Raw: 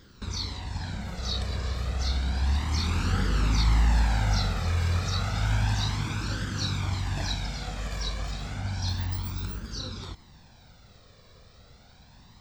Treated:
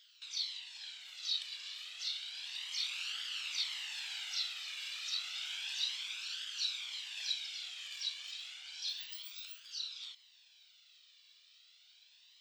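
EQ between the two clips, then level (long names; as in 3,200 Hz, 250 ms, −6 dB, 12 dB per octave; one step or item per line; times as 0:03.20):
high-pass with resonance 3,000 Hz, resonance Q 4.2
−8.0 dB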